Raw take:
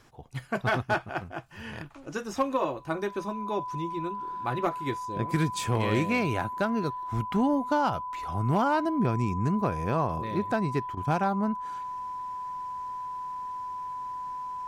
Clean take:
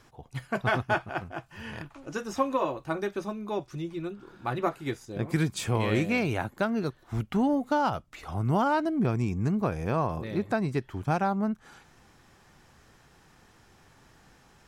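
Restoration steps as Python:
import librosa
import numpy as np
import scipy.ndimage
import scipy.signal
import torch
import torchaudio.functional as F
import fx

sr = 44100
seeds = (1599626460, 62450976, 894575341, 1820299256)

y = fx.fix_declip(x, sr, threshold_db=-17.0)
y = fx.notch(y, sr, hz=1000.0, q=30.0)
y = fx.fix_interpolate(y, sr, at_s=(10.95,), length_ms=20.0)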